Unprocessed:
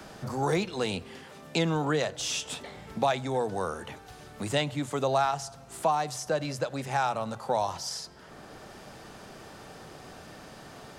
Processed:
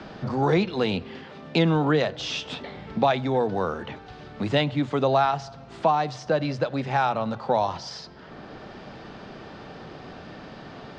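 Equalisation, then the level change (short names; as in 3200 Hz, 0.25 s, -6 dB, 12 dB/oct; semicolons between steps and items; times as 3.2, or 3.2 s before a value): LPF 4500 Hz 24 dB/oct; bell 230 Hz +4 dB 1.6 oct; +4.0 dB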